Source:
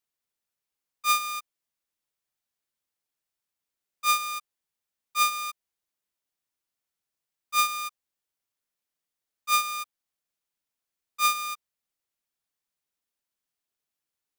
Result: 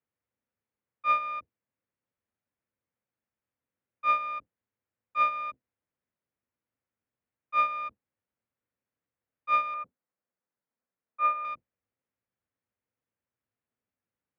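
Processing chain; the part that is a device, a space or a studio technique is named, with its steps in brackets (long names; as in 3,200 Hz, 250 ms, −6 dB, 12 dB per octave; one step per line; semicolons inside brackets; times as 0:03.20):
0:09.74–0:11.45: three-way crossover with the lows and the highs turned down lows −22 dB, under 230 Hz, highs −21 dB, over 2,500 Hz
sub-octave bass pedal (sub-octave generator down 1 octave, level +1 dB; loudspeaker in its box 74–2,300 Hz, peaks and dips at 150 Hz −6 dB, 250 Hz +4 dB, 510 Hz +7 dB)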